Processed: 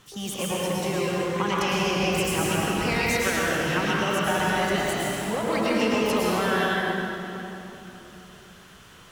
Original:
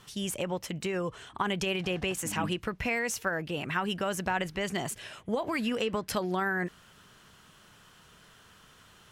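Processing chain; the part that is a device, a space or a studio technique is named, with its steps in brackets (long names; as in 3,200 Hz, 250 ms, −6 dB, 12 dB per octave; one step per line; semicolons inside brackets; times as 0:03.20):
shimmer-style reverb (pitch-shifted copies added +12 semitones −9 dB; convolution reverb RT60 3.3 s, pre-delay 98 ms, DRR −6 dB)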